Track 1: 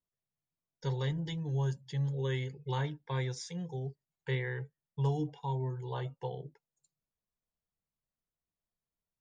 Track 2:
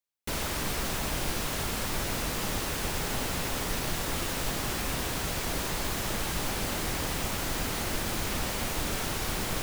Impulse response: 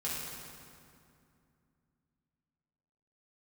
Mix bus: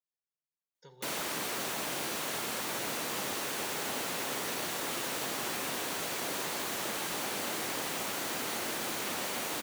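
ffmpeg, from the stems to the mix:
-filter_complex "[0:a]acompressor=threshold=0.0112:ratio=3,volume=0.316,asplit=2[s0][s1];[s1]volume=0.224[s2];[1:a]bandreject=f=5100:w=25,adelay=750,volume=0.794[s3];[2:a]atrim=start_sample=2205[s4];[s2][s4]afir=irnorm=-1:irlink=0[s5];[s0][s3][s5]amix=inputs=3:normalize=0,highpass=270"

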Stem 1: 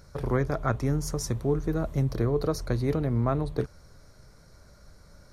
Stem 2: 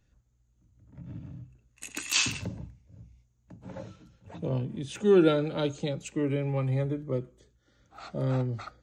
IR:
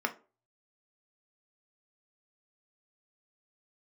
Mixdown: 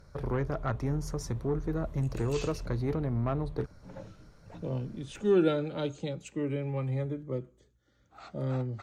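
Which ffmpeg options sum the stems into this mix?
-filter_complex "[0:a]asoftclip=type=tanh:threshold=0.106,volume=0.708,asplit=2[s0][s1];[1:a]highshelf=f=8300:g=9.5,adelay=200,volume=0.631[s2];[s1]apad=whole_len=398197[s3];[s2][s3]sidechaincompress=threshold=0.01:ratio=10:attack=16:release=348[s4];[s0][s4]amix=inputs=2:normalize=0,aemphasis=mode=reproduction:type=cd"

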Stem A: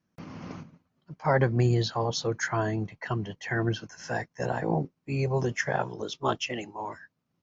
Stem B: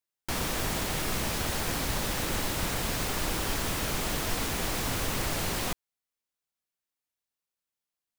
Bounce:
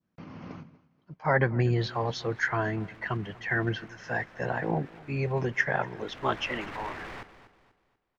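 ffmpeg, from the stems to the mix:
-filter_complex "[0:a]lowpass=3900,volume=0.794,asplit=2[s0][s1];[s1]volume=0.0794[s2];[1:a]lowpass=1300,alimiter=level_in=1.41:limit=0.0631:level=0:latency=1:release=27,volume=0.708,aeval=exprs='0.0141*(abs(mod(val(0)/0.0141+3,4)-2)-1)':c=same,adelay=1500,volume=0.891,afade=t=in:st=5.95:d=0.6:silence=0.223872,asplit=2[s3][s4];[s4]volume=0.224[s5];[s2][s5]amix=inputs=2:normalize=0,aecho=0:1:243|486|729|972|1215:1|0.37|0.137|0.0507|0.0187[s6];[s0][s3][s6]amix=inputs=3:normalize=0,adynamicequalizer=threshold=0.00398:dfrequency=1900:dqfactor=1.3:tfrequency=1900:tqfactor=1.3:attack=5:release=100:ratio=0.375:range=3.5:mode=boostabove:tftype=bell"

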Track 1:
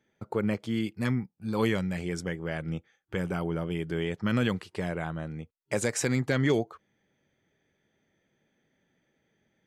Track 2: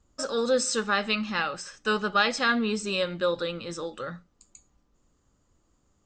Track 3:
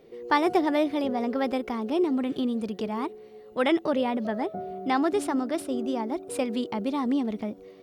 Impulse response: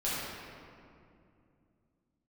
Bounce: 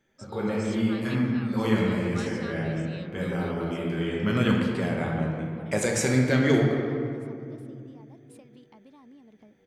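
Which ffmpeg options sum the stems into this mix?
-filter_complex "[0:a]volume=0.794,asplit=2[s0][s1];[s1]volume=0.631[s2];[1:a]volume=0.126,asplit=2[s3][s4];[2:a]acompressor=threshold=0.0224:ratio=6,adelay=2000,volume=0.141[s5];[s4]apad=whole_len=426410[s6];[s0][s6]sidechaincompress=threshold=0.00126:ratio=8:attack=16:release=448[s7];[3:a]atrim=start_sample=2205[s8];[s2][s8]afir=irnorm=-1:irlink=0[s9];[s7][s3][s5][s9]amix=inputs=4:normalize=0"

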